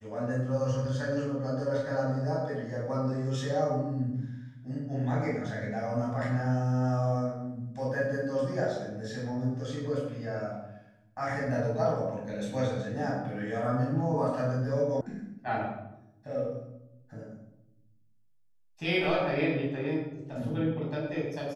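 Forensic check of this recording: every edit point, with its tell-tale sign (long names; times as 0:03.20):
0:15.01: cut off before it has died away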